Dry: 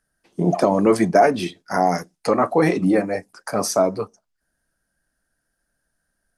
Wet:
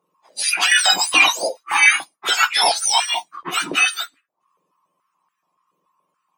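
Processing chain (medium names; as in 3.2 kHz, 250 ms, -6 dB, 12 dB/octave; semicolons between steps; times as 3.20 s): spectrum inverted on a logarithmic axis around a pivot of 1.3 kHz; step-sequenced high-pass 7 Hz 500–1600 Hz; trim +5 dB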